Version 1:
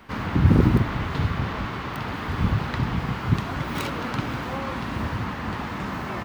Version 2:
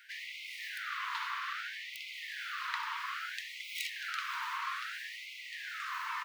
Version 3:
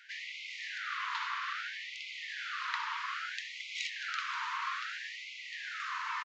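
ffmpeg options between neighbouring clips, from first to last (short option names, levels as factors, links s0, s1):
-af "afftfilt=real='re*gte(b*sr/1024,870*pow(2000/870,0.5+0.5*sin(2*PI*0.61*pts/sr)))':imag='im*gte(b*sr/1024,870*pow(2000/870,0.5+0.5*sin(2*PI*0.61*pts/sr)))':win_size=1024:overlap=0.75,volume=0.708"
-af "aresample=16000,aresample=44100,volume=1.12"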